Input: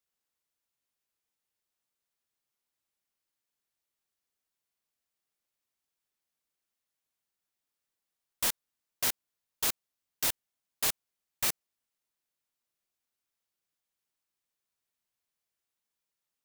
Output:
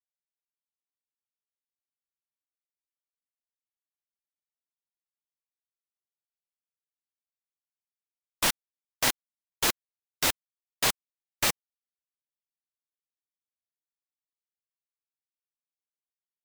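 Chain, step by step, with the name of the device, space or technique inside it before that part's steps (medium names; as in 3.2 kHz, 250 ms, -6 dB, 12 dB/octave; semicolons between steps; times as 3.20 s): spectral gate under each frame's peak -15 dB strong; early transistor amplifier (crossover distortion -50.5 dBFS; slew-rate limiter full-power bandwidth 200 Hz); trim +9 dB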